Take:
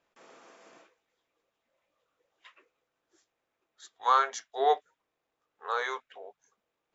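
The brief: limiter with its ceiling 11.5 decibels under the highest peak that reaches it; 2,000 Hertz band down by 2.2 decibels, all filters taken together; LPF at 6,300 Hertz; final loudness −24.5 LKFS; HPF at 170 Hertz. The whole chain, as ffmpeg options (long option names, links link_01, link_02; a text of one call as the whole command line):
ffmpeg -i in.wav -af "highpass=170,lowpass=6300,equalizer=frequency=2000:width_type=o:gain=-3,volume=12dB,alimiter=limit=-10.5dB:level=0:latency=1" out.wav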